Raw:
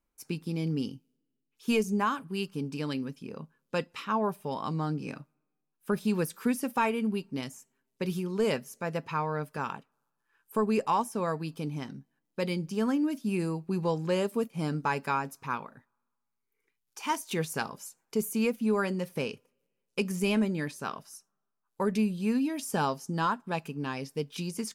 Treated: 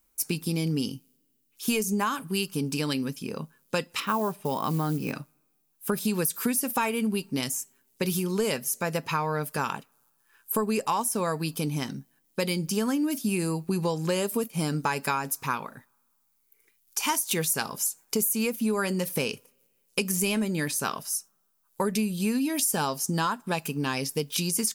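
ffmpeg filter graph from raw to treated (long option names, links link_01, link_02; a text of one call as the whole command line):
ffmpeg -i in.wav -filter_complex "[0:a]asettb=1/sr,asplit=3[link_01][link_02][link_03];[link_01]atrim=end=4.004[link_04];[link_02]atrim=start=4:end=5.13,asetpts=PTS-STARTPTS,afade=type=in:duration=0.004:curve=qsin,afade=type=out:start_time=1.126:duration=0.004:curve=qsin,aemphasis=mode=reproduction:type=75fm,acrusher=bits=8:mode=log:mix=0:aa=0.000001[link_05];[link_03]atrim=start=5.126[link_06];[link_04][link_05]acrossfade=duration=0.004:curve1=hsin:curve2=qsin[link_07];[link_07][link_06]acrossfade=duration=0.004:curve1=qsin:curve2=hsin,aemphasis=mode=production:type=75kf,acompressor=threshold=-30dB:ratio=5,volume=6.5dB" out.wav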